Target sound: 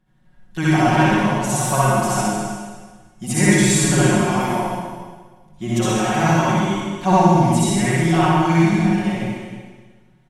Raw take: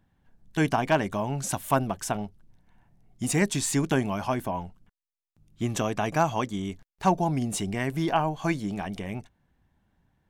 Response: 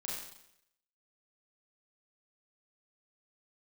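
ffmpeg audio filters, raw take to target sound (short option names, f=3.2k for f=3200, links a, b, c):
-filter_complex "[0:a]aecho=1:1:5.5:0.94,aecho=1:1:60|132|218.4|322.1|446.5:0.631|0.398|0.251|0.158|0.1[a];[1:a]atrim=start_sample=2205,asetrate=24696,aresample=44100[b];[a][b]afir=irnorm=-1:irlink=0"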